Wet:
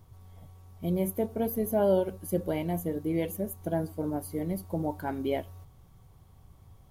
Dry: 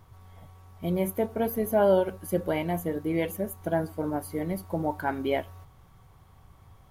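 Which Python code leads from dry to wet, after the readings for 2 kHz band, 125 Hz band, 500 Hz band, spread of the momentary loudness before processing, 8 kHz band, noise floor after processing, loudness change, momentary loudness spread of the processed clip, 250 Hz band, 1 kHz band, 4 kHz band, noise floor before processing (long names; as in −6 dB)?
−8.0 dB, −0.5 dB, −3.0 dB, 9 LU, −0.5 dB, −57 dBFS, −2.5 dB, 7 LU, −1.0 dB, −5.5 dB, −4.5 dB, −56 dBFS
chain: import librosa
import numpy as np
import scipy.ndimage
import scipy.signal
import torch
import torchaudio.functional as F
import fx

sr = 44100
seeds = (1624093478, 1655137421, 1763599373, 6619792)

y = fx.peak_eq(x, sr, hz=1500.0, db=-9.0, octaves=2.2)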